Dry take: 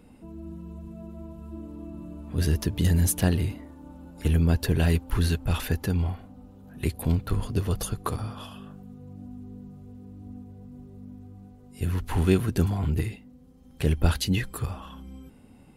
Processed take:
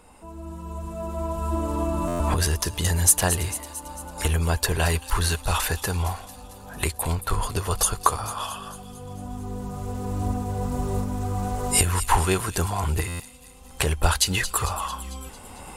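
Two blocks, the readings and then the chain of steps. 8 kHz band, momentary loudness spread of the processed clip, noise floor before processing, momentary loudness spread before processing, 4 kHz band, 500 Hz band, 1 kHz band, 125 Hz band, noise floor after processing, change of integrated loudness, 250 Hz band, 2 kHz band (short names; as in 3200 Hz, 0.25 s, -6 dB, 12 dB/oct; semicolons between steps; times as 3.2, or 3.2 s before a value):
+13.5 dB, 16 LU, -52 dBFS, 22 LU, +8.0 dB, +3.5 dB, +13.0 dB, -0.5 dB, -44 dBFS, +1.5 dB, -2.0 dB, +7.5 dB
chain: recorder AGC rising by 9.7 dB/s; graphic EQ 125/250/1000/8000 Hz -9/-11/+9/+10 dB; on a send: thin delay 0.224 s, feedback 59%, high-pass 3400 Hz, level -10.5 dB; on the sum: stuck buffer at 2.07/13.07, samples 512, times 10; gain +3.5 dB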